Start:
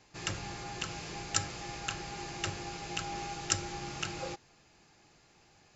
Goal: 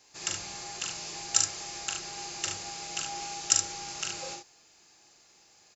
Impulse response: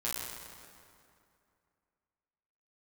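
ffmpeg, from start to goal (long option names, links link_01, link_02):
-af "bass=frequency=250:gain=-10,treble=frequency=4000:gain=12,aecho=1:1:41|72:0.596|0.473,volume=-3dB"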